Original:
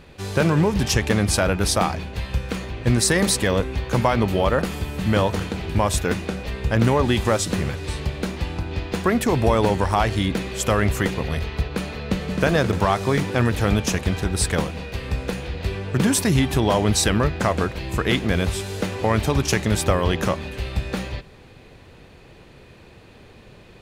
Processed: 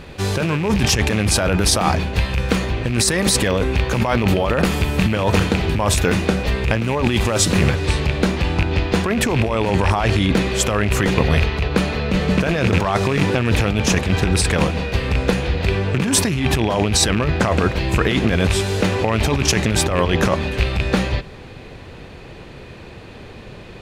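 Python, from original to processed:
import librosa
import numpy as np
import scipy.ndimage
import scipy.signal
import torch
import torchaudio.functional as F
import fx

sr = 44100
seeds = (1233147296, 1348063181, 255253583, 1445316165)

y = fx.rattle_buzz(x, sr, strikes_db=-20.0, level_db=-16.0)
y = fx.high_shelf(y, sr, hz=10000.0, db=fx.steps((0.0, -3.5), (7.69, -10.5)))
y = fx.over_compress(y, sr, threshold_db=-23.0, ratio=-1.0)
y = y * librosa.db_to_amplitude(6.5)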